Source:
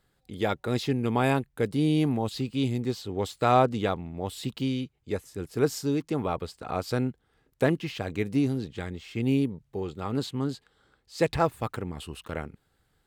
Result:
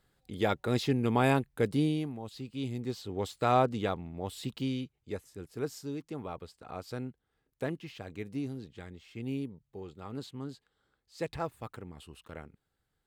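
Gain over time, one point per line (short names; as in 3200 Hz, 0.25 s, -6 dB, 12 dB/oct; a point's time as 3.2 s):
1.78 s -1.5 dB
2.13 s -14 dB
3.06 s -4.5 dB
4.75 s -4.5 dB
5.7 s -11 dB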